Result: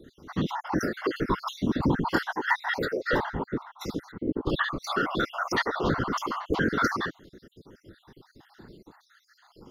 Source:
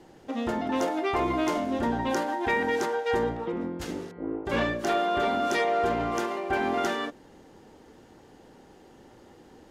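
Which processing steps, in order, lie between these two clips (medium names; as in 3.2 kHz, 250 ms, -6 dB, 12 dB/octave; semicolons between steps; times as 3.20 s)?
random holes in the spectrogram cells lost 59%; static phaser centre 2.4 kHz, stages 6; whisper effect; trim +8 dB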